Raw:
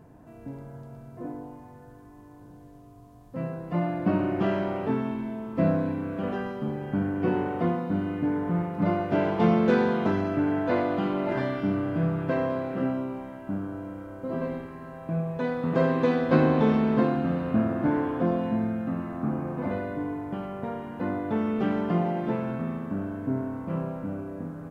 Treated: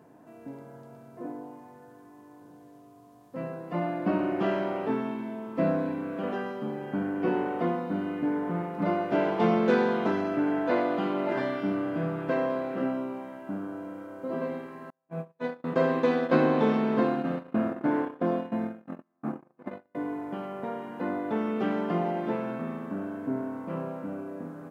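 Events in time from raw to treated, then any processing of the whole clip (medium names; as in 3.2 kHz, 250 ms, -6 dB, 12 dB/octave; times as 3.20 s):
14.90–19.95 s: gate -28 dBFS, range -40 dB
whole clip: high-pass 230 Hz 12 dB/octave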